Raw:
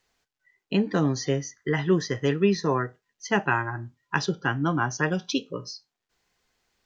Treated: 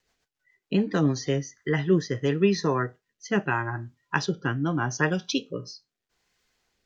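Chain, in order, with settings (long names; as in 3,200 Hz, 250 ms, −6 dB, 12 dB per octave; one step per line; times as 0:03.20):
rotating-speaker cabinet horn 7 Hz, later 0.8 Hz, at 0:00.89
level +2 dB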